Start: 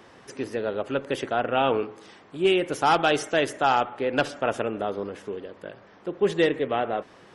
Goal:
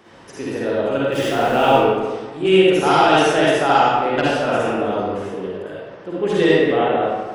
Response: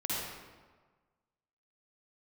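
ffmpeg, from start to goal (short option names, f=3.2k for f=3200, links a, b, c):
-filter_complex "[0:a]asettb=1/sr,asplit=3[a][b][c];[a]atrim=end=1.124[d];[b]atrim=start=1.12:end=1.72,asetpts=PTS-STARTPTS,afade=t=in:d=0.004:c=qsin,afade=t=out:st=0.596:d=0.004:c=qsin,aeval=exprs='val(0)+0.5*0.0188*sgn(val(0))':c=same[e];[c]atrim=start=1.716[f];[d][e]acrossfade=d=0.004:c1=hsin:c2=qsin[g];[g][f]acrossfade=d=0.004:c1=qsin:c2=hsin[h];[1:a]atrim=start_sample=2205[i];[h][i]afir=irnorm=-1:irlink=0,volume=2dB"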